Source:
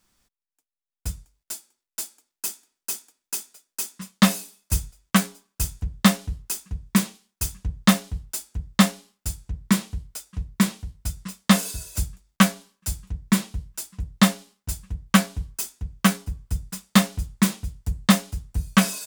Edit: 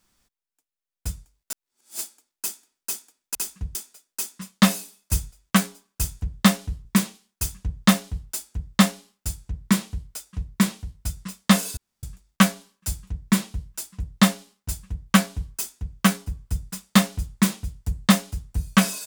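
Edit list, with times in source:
1.52–1.99 s: reverse
6.45–6.85 s: move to 3.35 s
11.77–12.03 s: room tone

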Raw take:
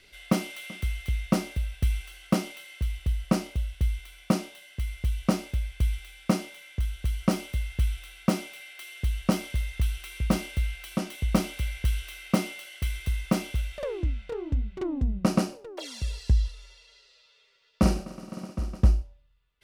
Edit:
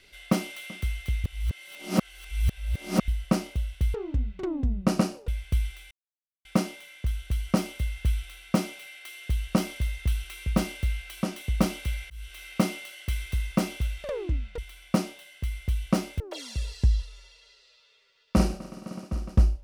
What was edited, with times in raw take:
1.24–3.08 s: reverse
3.94–5.56 s: swap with 14.32–15.66 s
6.19 s: insert silence 0.54 s
11.84–12.20 s: fade in

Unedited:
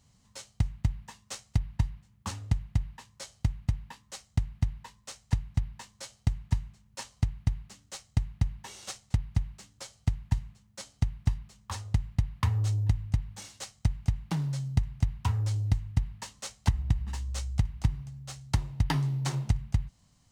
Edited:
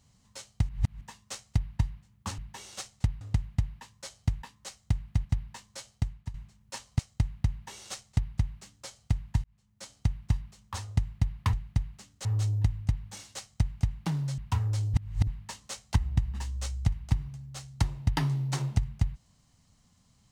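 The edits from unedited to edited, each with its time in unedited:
0.69–1.01 s: reverse
3.59–3.89 s: delete
4.72–5.50 s: delete
6.14–6.59 s: fade out, to -15 dB
7.24–7.96 s: move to 12.50 s
8.48–9.31 s: copy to 2.38 s
10.41–10.94 s: fade in linear
14.63–15.11 s: delete
15.67–16.00 s: reverse

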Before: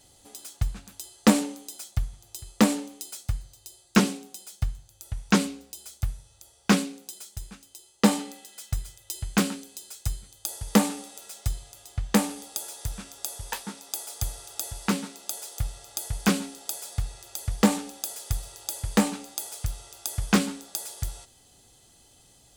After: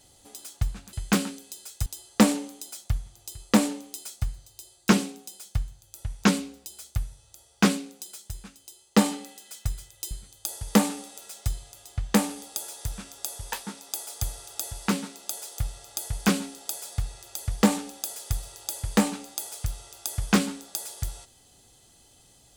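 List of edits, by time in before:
9.18–10.11 s: move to 0.93 s

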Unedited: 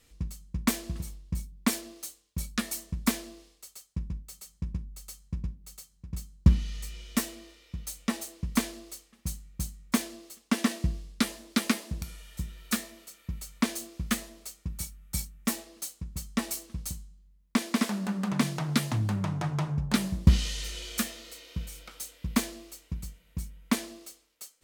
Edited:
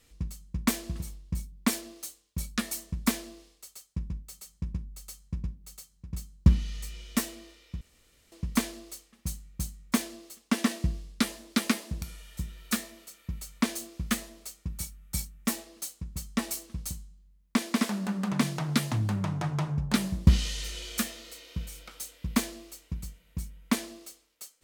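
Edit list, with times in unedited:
7.81–8.32 s: room tone

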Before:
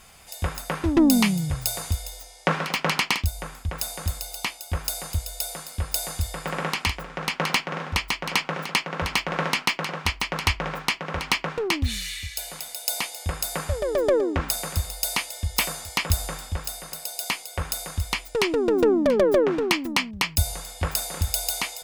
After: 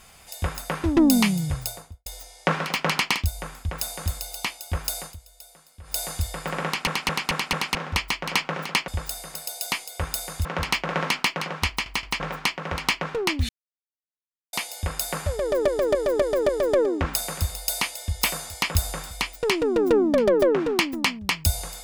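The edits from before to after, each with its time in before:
1.50–2.06 s: studio fade out
5.00–5.99 s: dip -17 dB, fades 0.16 s
6.65 s: stutter in place 0.22 s, 5 plays
10.12 s: stutter in place 0.17 s, 3 plays
11.92–12.96 s: mute
13.84–14.11 s: loop, 5 plays
16.46–18.03 s: move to 8.88 s

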